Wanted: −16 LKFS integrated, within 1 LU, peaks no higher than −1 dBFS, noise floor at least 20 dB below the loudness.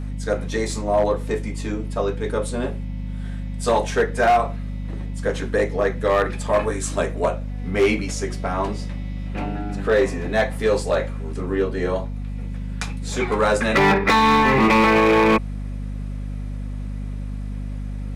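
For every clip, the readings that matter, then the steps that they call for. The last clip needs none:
share of clipped samples 1.3%; peaks flattened at −11.5 dBFS; mains hum 50 Hz; hum harmonics up to 250 Hz; level of the hum −26 dBFS; integrated loudness −22.0 LKFS; sample peak −11.5 dBFS; target loudness −16.0 LKFS
→ clipped peaks rebuilt −11.5 dBFS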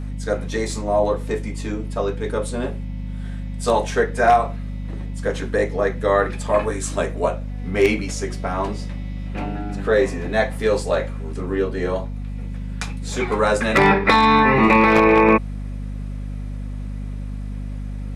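share of clipped samples 0.0%; mains hum 50 Hz; hum harmonics up to 550 Hz; level of the hum −26 dBFS
→ mains-hum notches 50/100/150/200/250/300 Hz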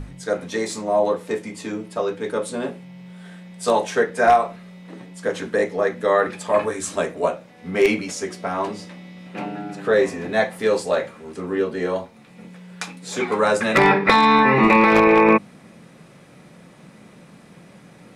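mains hum none found; integrated loudness −20.0 LKFS; sample peak −1.5 dBFS; target loudness −16.0 LKFS
→ level +4 dB
brickwall limiter −1 dBFS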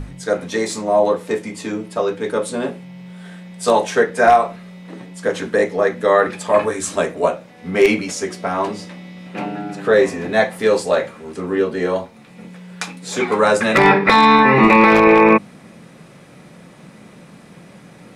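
integrated loudness −16.5 LKFS; sample peak −1.0 dBFS; background noise floor −44 dBFS

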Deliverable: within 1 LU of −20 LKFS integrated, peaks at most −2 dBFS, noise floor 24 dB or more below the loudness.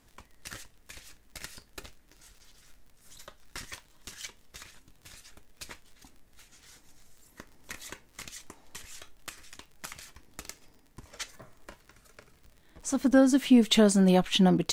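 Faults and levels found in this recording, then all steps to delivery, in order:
crackle rate 41 per second; integrated loudness −23.0 LKFS; sample peak −9.0 dBFS; target loudness −20.0 LKFS
→ click removal
level +3 dB

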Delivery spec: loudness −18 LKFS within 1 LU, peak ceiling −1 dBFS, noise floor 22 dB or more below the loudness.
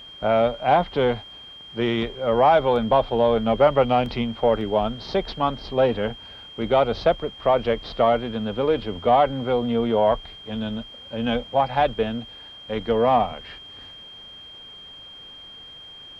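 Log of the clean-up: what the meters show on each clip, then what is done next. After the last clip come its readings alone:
number of dropouts 3; longest dropout 1.4 ms; interfering tone 3,200 Hz; level of the tone −40 dBFS; integrated loudness −22.0 LKFS; sample peak −6.5 dBFS; target loudness −18.0 LKFS
→ repair the gap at 0:02.76/0:04.06/0:04.61, 1.4 ms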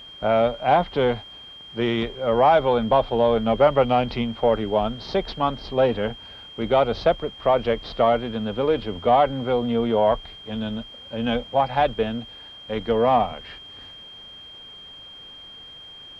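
number of dropouts 0; interfering tone 3,200 Hz; level of the tone −40 dBFS
→ notch filter 3,200 Hz, Q 30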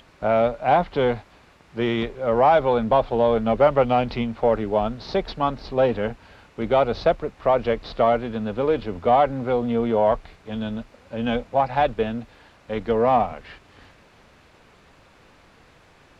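interfering tone none found; integrated loudness −22.0 LKFS; sample peak −6.5 dBFS; target loudness −18.0 LKFS
→ level +4 dB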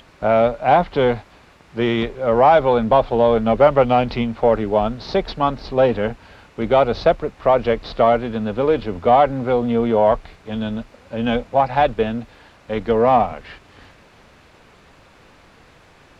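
integrated loudness −18.0 LKFS; sample peak −2.5 dBFS; background noise floor −50 dBFS

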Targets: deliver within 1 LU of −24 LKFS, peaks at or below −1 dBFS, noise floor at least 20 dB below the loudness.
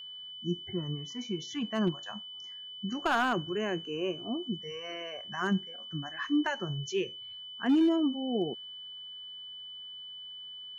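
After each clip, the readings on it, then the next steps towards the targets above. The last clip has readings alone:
share of clipped samples 0.4%; peaks flattened at −20.0 dBFS; interfering tone 3,000 Hz; level of the tone −42 dBFS; integrated loudness −33.5 LKFS; sample peak −20.0 dBFS; target loudness −24.0 LKFS
→ clipped peaks rebuilt −20 dBFS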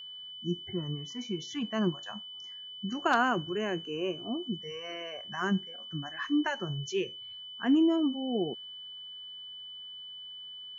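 share of clipped samples 0.0%; interfering tone 3,000 Hz; level of the tone −42 dBFS
→ notch filter 3,000 Hz, Q 30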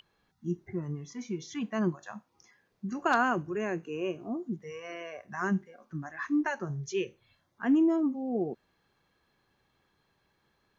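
interfering tone none found; integrated loudness −32.0 LKFS; sample peak −11.0 dBFS; target loudness −24.0 LKFS
→ level +8 dB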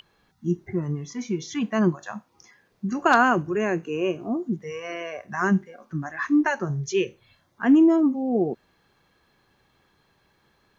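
integrated loudness −24.5 LKFS; sample peak −3.0 dBFS; background noise floor −66 dBFS

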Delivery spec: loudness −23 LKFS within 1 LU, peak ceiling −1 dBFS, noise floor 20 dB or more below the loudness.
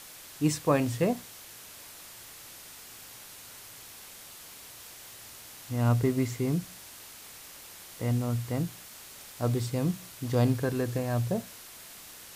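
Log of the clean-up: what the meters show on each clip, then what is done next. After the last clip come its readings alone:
background noise floor −48 dBFS; target noise floor −50 dBFS; integrated loudness −29.5 LKFS; sample peak −12.5 dBFS; target loudness −23.0 LKFS
→ noise reduction from a noise print 6 dB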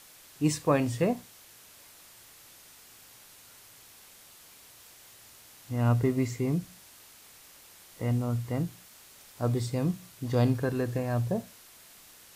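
background noise floor −54 dBFS; integrated loudness −29.5 LKFS; sample peak −12.5 dBFS; target loudness −23.0 LKFS
→ level +6.5 dB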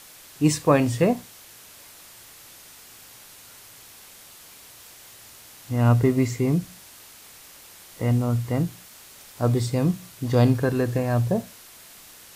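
integrated loudness −23.0 LKFS; sample peak −6.0 dBFS; background noise floor −47 dBFS

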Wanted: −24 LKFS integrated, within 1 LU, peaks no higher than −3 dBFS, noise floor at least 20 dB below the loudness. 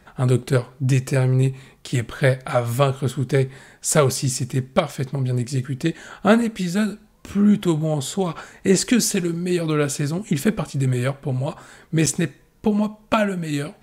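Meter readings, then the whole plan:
number of dropouts 1; longest dropout 6.0 ms; integrated loudness −22.0 LKFS; sample peak −4.5 dBFS; target loudness −24.0 LKFS
→ repair the gap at 0:12.06, 6 ms
level −2 dB

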